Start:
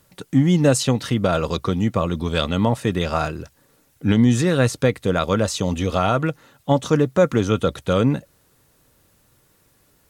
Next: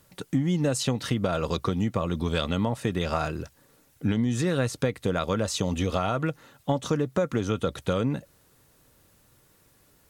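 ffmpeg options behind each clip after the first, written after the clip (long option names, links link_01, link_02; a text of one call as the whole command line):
ffmpeg -i in.wav -af "acompressor=threshold=-20dB:ratio=6,volume=-1.5dB" out.wav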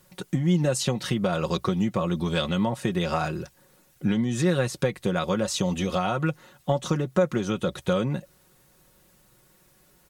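ffmpeg -i in.wav -af "aecho=1:1:5.5:0.62" out.wav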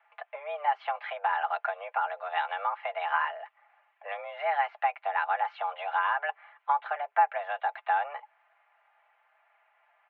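ffmpeg -i in.wav -af "highpass=frequency=410:width_type=q:width=0.5412,highpass=frequency=410:width_type=q:width=1.307,lowpass=frequency=2300:width_type=q:width=0.5176,lowpass=frequency=2300:width_type=q:width=0.7071,lowpass=frequency=2300:width_type=q:width=1.932,afreqshift=290" out.wav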